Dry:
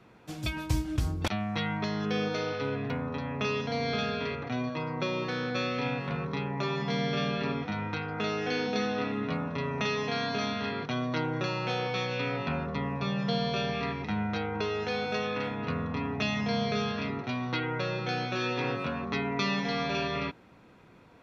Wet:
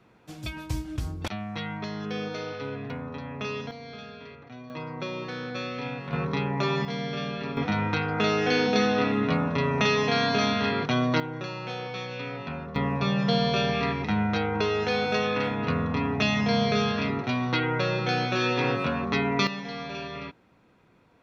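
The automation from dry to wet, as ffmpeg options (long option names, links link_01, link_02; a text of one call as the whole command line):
ffmpeg -i in.wav -af "asetnsamples=nb_out_samples=441:pad=0,asendcmd='3.71 volume volume -11.5dB;4.7 volume volume -2.5dB;6.13 volume volume 5dB;6.85 volume volume -2dB;7.57 volume volume 7dB;11.2 volume volume -3.5dB;12.76 volume volume 5.5dB;19.47 volume volume -5dB',volume=-2.5dB" out.wav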